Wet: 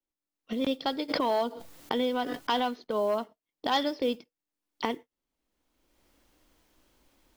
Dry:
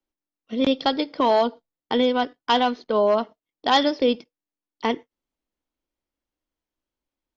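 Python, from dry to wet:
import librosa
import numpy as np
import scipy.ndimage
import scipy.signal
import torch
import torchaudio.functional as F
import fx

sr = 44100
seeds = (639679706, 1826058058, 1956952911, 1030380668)

y = fx.recorder_agc(x, sr, target_db=-16.5, rise_db_per_s=26.0, max_gain_db=30)
y = fx.mod_noise(y, sr, seeds[0], snr_db=30)
y = fx.pre_swell(y, sr, db_per_s=37.0, at=(1.08, 2.7), fade=0.02)
y = y * librosa.db_to_amplitude(-8.5)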